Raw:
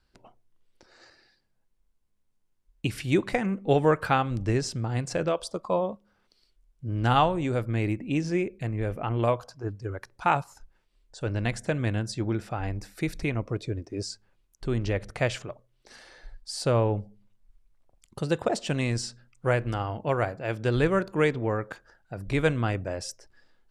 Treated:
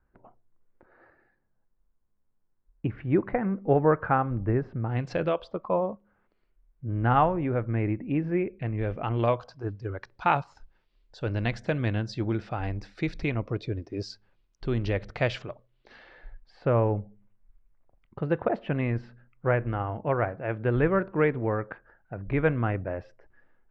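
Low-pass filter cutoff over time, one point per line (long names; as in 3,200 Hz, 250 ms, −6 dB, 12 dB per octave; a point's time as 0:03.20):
low-pass filter 24 dB per octave
0:04.78 1,700 Hz
0:05.12 4,200 Hz
0:05.81 2,100 Hz
0:08.36 2,100 Hz
0:09.05 4,700 Hz
0:15.49 4,700 Hz
0:16.61 2,200 Hz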